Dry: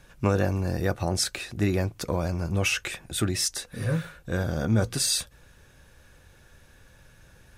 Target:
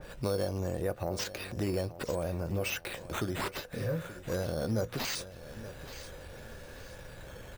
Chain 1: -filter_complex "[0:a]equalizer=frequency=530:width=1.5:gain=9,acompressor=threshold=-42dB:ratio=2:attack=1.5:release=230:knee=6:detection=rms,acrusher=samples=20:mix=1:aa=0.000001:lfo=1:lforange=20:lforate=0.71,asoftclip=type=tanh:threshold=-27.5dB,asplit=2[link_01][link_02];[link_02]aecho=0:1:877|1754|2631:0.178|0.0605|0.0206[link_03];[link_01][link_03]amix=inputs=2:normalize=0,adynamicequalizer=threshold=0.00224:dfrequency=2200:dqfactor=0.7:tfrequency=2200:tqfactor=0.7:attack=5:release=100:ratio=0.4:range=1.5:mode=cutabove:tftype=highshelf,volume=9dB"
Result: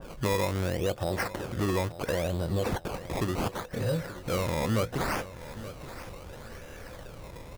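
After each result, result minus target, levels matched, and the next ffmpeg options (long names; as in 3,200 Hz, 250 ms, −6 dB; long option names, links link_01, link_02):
downward compressor: peak gain reduction −5 dB; sample-and-hold swept by an LFO: distortion +6 dB
-filter_complex "[0:a]equalizer=frequency=530:width=1.5:gain=9,acompressor=threshold=-51.5dB:ratio=2:attack=1.5:release=230:knee=6:detection=rms,acrusher=samples=20:mix=1:aa=0.000001:lfo=1:lforange=20:lforate=0.71,asoftclip=type=tanh:threshold=-27.5dB,asplit=2[link_01][link_02];[link_02]aecho=0:1:877|1754|2631:0.178|0.0605|0.0206[link_03];[link_01][link_03]amix=inputs=2:normalize=0,adynamicequalizer=threshold=0.00224:dfrequency=2200:dqfactor=0.7:tfrequency=2200:tqfactor=0.7:attack=5:release=100:ratio=0.4:range=1.5:mode=cutabove:tftype=highshelf,volume=9dB"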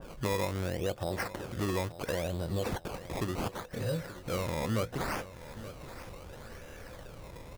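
sample-and-hold swept by an LFO: distortion +6 dB
-filter_complex "[0:a]equalizer=frequency=530:width=1.5:gain=9,acompressor=threshold=-51.5dB:ratio=2:attack=1.5:release=230:knee=6:detection=rms,acrusher=samples=6:mix=1:aa=0.000001:lfo=1:lforange=6:lforate=0.71,asoftclip=type=tanh:threshold=-27.5dB,asplit=2[link_01][link_02];[link_02]aecho=0:1:877|1754|2631:0.178|0.0605|0.0206[link_03];[link_01][link_03]amix=inputs=2:normalize=0,adynamicequalizer=threshold=0.00224:dfrequency=2200:dqfactor=0.7:tfrequency=2200:tqfactor=0.7:attack=5:release=100:ratio=0.4:range=1.5:mode=cutabove:tftype=highshelf,volume=9dB"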